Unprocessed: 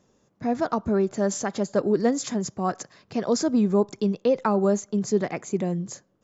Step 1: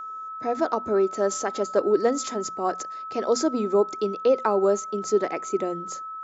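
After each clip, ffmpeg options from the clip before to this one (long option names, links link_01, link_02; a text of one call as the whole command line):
ffmpeg -i in.wav -af "lowshelf=frequency=240:width_type=q:width=1.5:gain=-11,bandreject=frequency=60:width_type=h:width=6,bandreject=frequency=120:width_type=h:width=6,bandreject=frequency=180:width_type=h:width=6,bandreject=frequency=240:width_type=h:width=6,aeval=exprs='val(0)+0.0224*sin(2*PI*1300*n/s)':channel_layout=same" out.wav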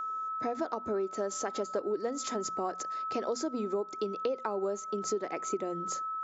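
ffmpeg -i in.wav -af "acompressor=threshold=-30dB:ratio=6" out.wav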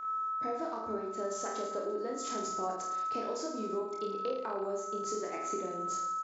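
ffmpeg -i in.wav -filter_complex "[0:a]asplit=2[link_01][link_02];[link_02]adelay=27,volume=-3.5dB[link_03];[link_01][link_03]amix=inputs=2:normalize=0,aecho=1:1:50|107.5|173.6|249.7|337.1:0.631|0.398|0.251|0.158|0.1,volume=-6.5dB" out.wav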